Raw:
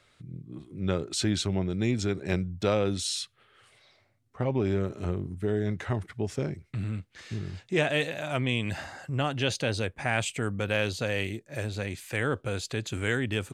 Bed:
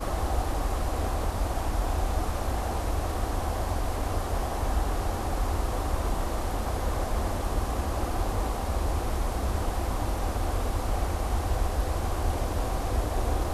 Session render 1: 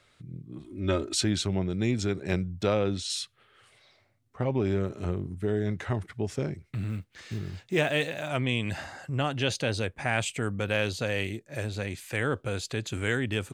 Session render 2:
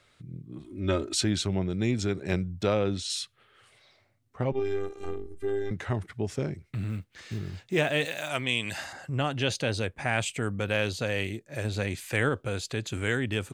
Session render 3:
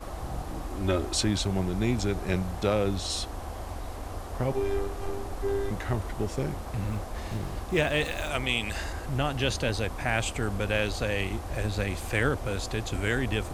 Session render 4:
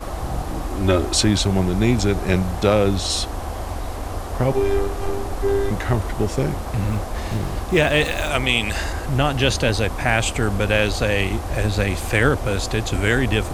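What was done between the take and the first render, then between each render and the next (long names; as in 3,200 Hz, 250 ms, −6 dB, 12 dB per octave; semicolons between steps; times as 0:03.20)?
0:00.64–0:01.21: comb filter 3.2 ms, depth 100%; 0:02.66–0:03.10: high-frequency loss of the air 68 metres; 0:06.64–0:08.31: one scale factor per block 7 bits
0:04.52–0:05.71: phases set to zero 398 Hz; 0:08.05–0:08.93: spectral tilt +2.5 dB per octave; 0:11.65–0:12.29: clip gain +3 dB
mix in bed −8 dB
level +9 dB; brickwall limiter −3 dBFS, peak gain reduction 1.5 dB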